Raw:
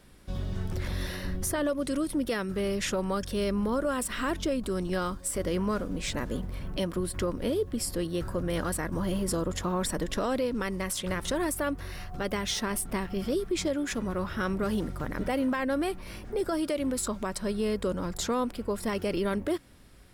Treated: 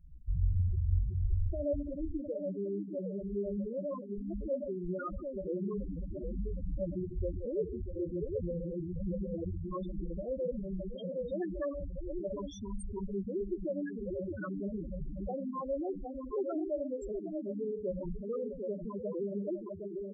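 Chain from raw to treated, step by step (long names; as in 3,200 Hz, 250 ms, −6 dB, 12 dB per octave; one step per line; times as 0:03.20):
0:03.05–0:03.83: samples sorted by size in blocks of 8 samples
0:09.91–0:10.89: parametric band 5,600 Hz −11.5 dB 1.7 octaves
brickwall limiter −24 dBFS, peak gain reduction 5 dB
convolution reverb RT60 0.45 s, pre-delay 31 ms, DRR 12 dB
log-companded quantiser 4 bits
speech leveller 2 s
multi-tap delay 69/121/146/449/645/764 ms −10.5/−19/−11.5/−16/−8.5/−4.5 dB
spectral peaks only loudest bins 4
graphic EQ with 15 bands 250 Hz −12 dB, 1,600 Hz +5 dB, 4,000 Hz −9 dB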